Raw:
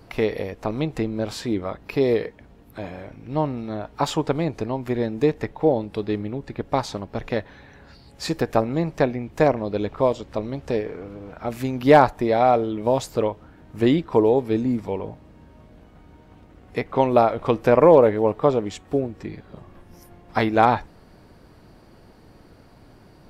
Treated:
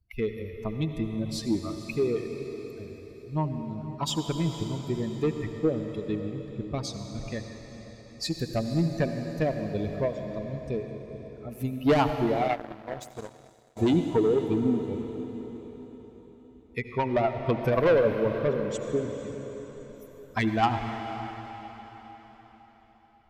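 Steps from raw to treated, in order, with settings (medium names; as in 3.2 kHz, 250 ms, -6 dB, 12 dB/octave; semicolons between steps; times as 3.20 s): expander on every frequency bin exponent 2; in parallel at -2 dB: compression, threshold -29 dBFS, peak gain reduction 17.5 dB; on the sum: saturation -17 dBFS, distortion -9 dB; rotary cabinet horn 1.1 Hz, later 8 Hz, at 10.14 s; echo that smears into a reverb 502 ms, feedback 45%, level -14 dB; on a send at -6 dB: reverberation RT60 4.2 s, pre-delay 67 ms; 12.48–13.77 s: on the sum: power-law waveshaper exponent 2; trim +1.5 dB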